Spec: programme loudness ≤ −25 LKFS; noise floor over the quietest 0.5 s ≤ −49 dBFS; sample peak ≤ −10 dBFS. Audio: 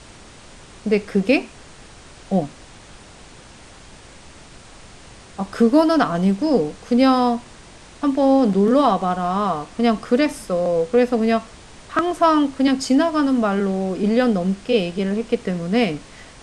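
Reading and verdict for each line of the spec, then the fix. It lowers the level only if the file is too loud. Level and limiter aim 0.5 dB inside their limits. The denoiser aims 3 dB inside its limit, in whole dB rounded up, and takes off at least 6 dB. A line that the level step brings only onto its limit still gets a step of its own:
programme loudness −19.0 LKFS: out of spec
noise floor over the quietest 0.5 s −43 dBFS: out of spec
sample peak −4.5 dBFS: out of spec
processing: level −6.5 dB

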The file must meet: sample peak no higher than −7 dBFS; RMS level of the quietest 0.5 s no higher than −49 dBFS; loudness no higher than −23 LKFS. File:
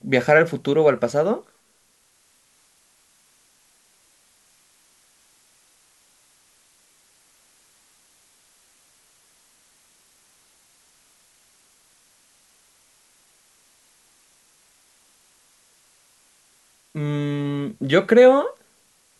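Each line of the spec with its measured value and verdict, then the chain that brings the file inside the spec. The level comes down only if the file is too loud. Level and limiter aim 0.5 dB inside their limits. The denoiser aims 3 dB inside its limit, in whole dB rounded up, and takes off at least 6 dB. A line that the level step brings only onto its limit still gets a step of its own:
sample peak −2.5 dBFS: out of spec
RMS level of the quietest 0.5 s −62 dBFS: in spec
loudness −19.0 LKFS: out of spec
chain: level −4.5 dB
brickwall limiter −7.5 dBFS

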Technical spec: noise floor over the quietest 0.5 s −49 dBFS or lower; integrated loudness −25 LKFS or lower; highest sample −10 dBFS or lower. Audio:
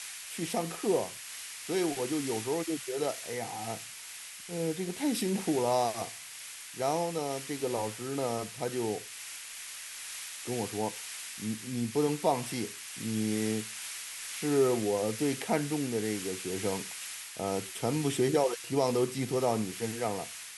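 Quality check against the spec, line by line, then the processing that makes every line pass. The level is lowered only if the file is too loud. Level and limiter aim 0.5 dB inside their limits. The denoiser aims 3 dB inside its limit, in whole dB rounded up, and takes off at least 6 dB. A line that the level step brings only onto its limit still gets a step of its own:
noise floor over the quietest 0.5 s −45 dBFS: out of spec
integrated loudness −32.5 LKFS: in spec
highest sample −14.5 dBFS: in spec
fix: broadband denoise 7 dB, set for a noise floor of −45 dBFS

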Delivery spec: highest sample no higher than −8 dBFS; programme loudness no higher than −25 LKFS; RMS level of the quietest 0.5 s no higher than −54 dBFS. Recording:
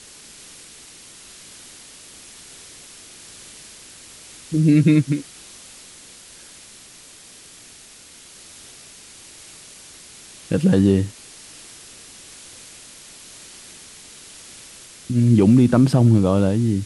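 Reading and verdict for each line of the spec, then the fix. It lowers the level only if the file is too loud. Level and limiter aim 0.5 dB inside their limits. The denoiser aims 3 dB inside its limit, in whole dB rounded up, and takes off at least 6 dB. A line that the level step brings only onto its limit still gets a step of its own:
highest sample −5.0 dBFS: out of spec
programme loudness −17.0 LKFS: out of spec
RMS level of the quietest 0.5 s −45 dBFS: out of spec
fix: broadband denoise 6 dB, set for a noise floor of −45 dBFS
level −8.5 dB

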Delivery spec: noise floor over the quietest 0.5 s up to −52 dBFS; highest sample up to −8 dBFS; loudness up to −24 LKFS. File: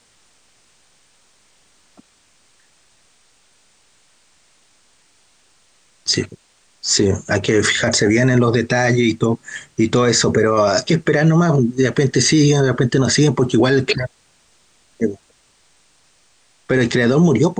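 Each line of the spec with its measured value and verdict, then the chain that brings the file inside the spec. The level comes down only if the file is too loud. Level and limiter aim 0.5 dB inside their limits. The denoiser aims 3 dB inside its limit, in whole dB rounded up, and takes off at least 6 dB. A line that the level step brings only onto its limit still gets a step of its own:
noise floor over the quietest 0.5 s −57 dBFS: in spec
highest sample −5.5 dBFS: out of spec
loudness −16.0 LKFS: out of spec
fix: level −8.5 dB

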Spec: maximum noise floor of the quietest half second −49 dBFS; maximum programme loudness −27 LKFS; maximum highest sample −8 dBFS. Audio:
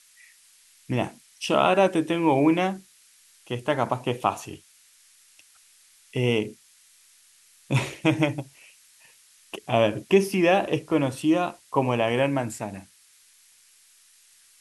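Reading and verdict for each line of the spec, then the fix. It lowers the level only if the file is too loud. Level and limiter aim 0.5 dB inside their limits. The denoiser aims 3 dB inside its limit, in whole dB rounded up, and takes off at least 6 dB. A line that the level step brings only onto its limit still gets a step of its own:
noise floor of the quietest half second −57 dBFS: in spec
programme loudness −24.5 LKFS: out of spec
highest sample −6.5 dBFS: out of spec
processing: level −3 dB

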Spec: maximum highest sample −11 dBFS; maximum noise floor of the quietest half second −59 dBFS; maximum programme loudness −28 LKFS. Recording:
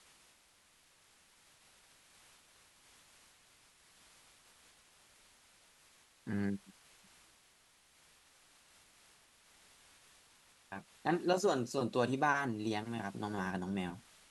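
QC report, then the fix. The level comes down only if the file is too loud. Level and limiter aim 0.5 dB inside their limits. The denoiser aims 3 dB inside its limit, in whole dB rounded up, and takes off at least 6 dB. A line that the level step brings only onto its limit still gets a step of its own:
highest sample −18.0 dBFS: in spec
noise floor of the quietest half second −68 dBFS: in spec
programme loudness −36.5 LKFS: in spec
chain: no processing needed

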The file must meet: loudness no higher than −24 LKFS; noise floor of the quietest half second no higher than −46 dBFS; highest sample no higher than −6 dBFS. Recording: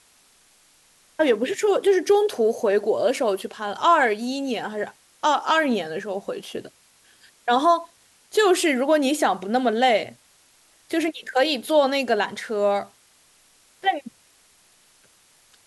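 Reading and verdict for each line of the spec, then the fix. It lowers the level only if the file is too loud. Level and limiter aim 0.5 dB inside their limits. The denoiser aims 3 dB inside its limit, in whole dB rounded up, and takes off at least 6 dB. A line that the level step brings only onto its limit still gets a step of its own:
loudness −22.0 LKFS: out of spec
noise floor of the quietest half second −58 dBFS: in spec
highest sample −7.0 dBFS: in spec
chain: level −2.5 dB

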